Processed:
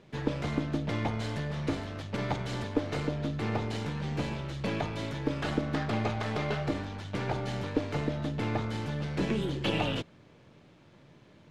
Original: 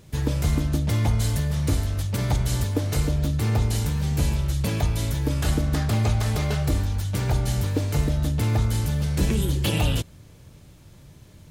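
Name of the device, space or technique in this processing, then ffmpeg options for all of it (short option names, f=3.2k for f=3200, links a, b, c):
crystal radio: -af "highpass=210,lowpass=3k,aeval=exprs='if(lt(val(0),0),0.708*val(0),val(0))':c=same"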